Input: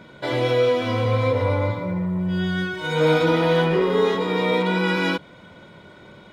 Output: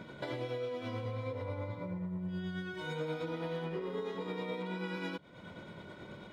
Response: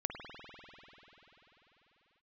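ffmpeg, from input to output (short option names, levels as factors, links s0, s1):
-af "equalizer=f=190:w=0.36:g=3,acompressor=threshold=0.02:ratio=4,tremolo=f=9.3:d=0.37,volume=0.668"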